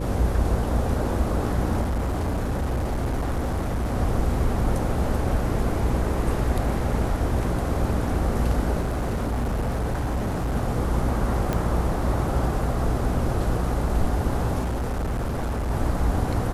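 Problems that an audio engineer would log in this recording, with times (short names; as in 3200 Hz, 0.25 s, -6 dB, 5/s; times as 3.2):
buzz 60 Hz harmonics 9 -28 dBFS
1.81–3.96 clipped -21.5 dBFS
8.81–10.56 clipped -21.5 dBFS
11.53 pop -12 dBFS
14.63–15.71 clipped -23 dBFS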